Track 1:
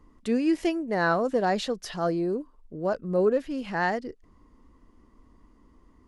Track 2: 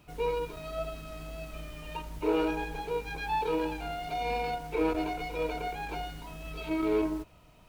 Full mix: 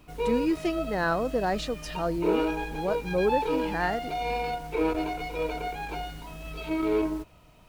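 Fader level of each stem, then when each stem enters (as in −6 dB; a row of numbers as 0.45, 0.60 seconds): −2.5, +2.0 decibels; 0.00, 0.00 seconds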